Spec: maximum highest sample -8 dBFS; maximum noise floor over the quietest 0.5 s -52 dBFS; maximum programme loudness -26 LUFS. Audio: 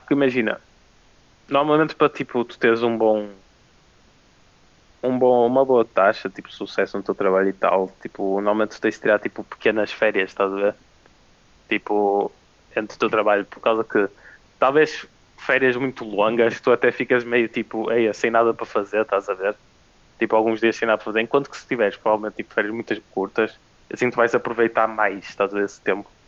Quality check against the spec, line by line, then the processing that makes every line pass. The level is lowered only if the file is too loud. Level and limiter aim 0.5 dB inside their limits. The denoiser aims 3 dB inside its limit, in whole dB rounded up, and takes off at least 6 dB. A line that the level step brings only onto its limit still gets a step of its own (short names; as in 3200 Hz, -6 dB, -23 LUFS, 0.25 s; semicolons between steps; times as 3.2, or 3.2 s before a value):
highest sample -5.0 dBFS: fail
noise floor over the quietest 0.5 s -55 dBFS: OK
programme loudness -21.0 LUFS: fail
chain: gain -5.5 dB